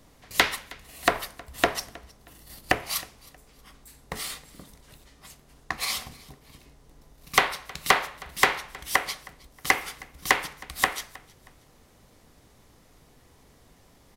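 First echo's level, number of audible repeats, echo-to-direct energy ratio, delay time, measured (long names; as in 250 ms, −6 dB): −23.0 dB, 2, −22.5 dB, 316 ms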